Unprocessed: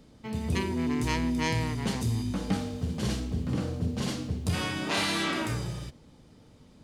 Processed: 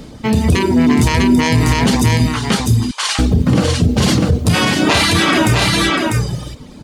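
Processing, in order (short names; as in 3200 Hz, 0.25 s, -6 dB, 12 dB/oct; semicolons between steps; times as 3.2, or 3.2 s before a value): 2.26–3.19 Chebyshev band-pass 980–9800 Hz, order 3; reverb removal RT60 1 s; on a send: echo 0.647 s -4.5 dB; on the sum: maximiser +24.5 dB; gain -3 dB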